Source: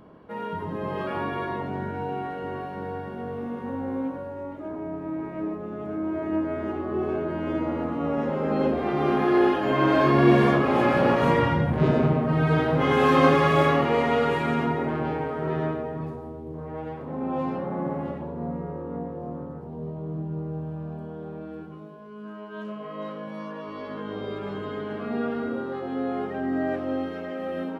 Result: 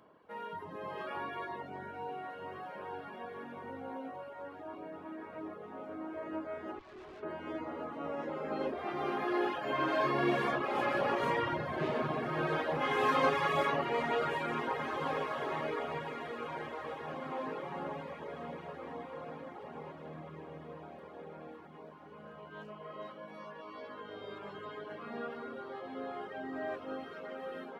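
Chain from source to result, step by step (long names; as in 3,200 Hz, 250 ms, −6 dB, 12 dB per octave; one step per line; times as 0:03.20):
high-pass filter 140 Hz 12 dB per octave
parametric band 200 Hz −10 dB 2.1 octaves
feedback delay with all-pass diffusion 1,920 ms, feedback 44%, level −7.5 dB
0:06.79–0:07.23: tube saturation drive 40 dB, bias 0.8
reverb reduction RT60 0.66 s
level −6 dB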